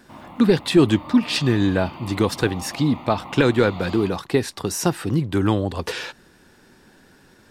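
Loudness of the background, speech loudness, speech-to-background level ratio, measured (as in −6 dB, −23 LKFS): −38.0 LKFS, −21.0 LKFS, 17.0 dB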